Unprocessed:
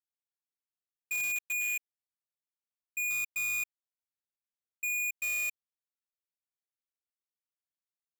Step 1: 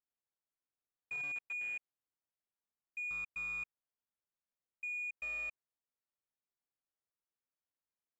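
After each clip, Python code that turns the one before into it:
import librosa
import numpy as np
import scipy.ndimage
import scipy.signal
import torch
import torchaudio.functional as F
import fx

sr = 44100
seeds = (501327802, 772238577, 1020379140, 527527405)

y = scipy.signal.sosfilt(scipy.signal.butter(2, 1600.0, 'lowpass', fs=sr, output='sos'), x)
y = F.gain(torch.from_numpy(y), 1.0).numpy()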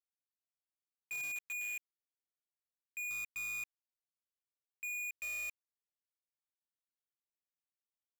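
y = fx.leveller(x, sr, passes=5)
y = F.gain(torch.from_numpy(y), -4.0).numpy()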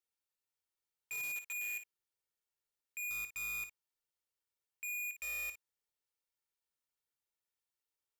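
y = x + 0.47 * np.pad(x, (int(2.2 * sr / 1000.0), 0))[:len(x)]
y = fx.room_early_taps(y, sr, ms=(25, 56), db=(-15.5, -10.5))
y = F.gain(torch.from_numpy(y), 1.0).numpy()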